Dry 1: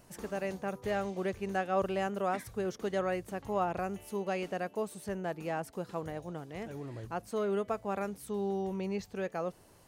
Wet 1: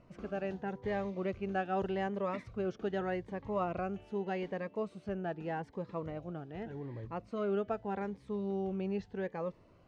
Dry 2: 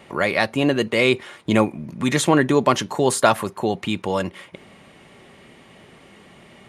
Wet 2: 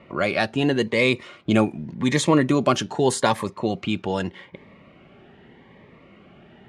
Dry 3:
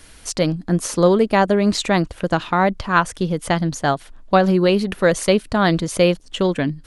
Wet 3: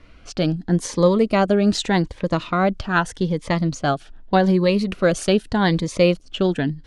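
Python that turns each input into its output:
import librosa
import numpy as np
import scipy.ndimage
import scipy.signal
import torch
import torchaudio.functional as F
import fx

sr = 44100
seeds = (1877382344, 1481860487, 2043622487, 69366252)

y = fx.env_lowpass(x, sr, base_hz=2200.0, full_db=-14.5)
y = scipy.signal.sosfilt(scipy.signal.bessel(2, 7700.0, 'lowpass', norm='mag', fs=sr, output='sos'), y)
y = fx.notch_cascade(y, sr, direction='rising', hz=0.83)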